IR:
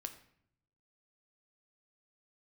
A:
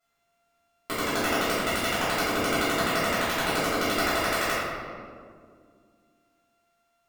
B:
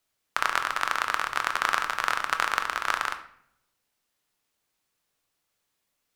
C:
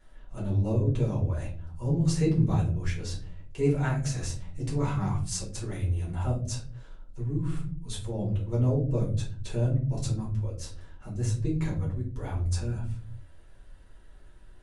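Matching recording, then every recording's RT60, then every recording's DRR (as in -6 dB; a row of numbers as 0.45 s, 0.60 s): B; 2.1 s, 0.65 s, 0.50 s; -15.5 dB, 6.5 dB, -6.0 dB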